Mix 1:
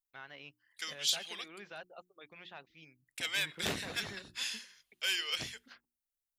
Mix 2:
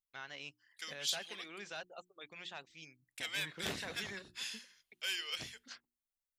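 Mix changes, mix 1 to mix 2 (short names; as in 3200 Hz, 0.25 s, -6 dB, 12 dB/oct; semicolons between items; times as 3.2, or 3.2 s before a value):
first voice: remove air absorption 240 m; second voice -5.0 dB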